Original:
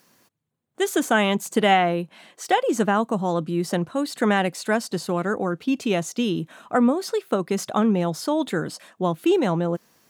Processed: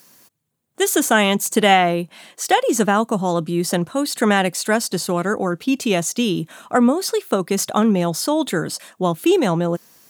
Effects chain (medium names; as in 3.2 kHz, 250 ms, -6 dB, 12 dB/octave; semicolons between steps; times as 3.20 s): treble shelf 5 kHz +10 dB; trim +3.5 dB